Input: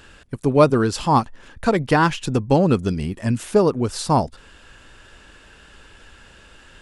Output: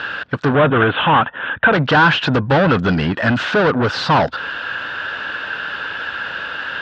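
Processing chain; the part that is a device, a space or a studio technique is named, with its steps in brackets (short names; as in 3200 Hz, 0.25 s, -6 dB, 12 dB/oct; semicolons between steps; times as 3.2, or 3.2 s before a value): LPF 9100 Hz 24 dB/oct; overdrive pedal into a guitar cabinet (overdrive pedal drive 33 dB, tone 4600 Hz, clips at -2.5 dBFS; speaker cabinet 99–4000 Hz, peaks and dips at 220 Hz -5 dB, 370 Hz -7 dB, 1500 Hz +9 dB, 2200 Hz -5 dB); 0.55–1.73 steep low-pass 3600 Hz 96 dB/oct; low shelf 270 Hz +5 dB; gain -4.5 dB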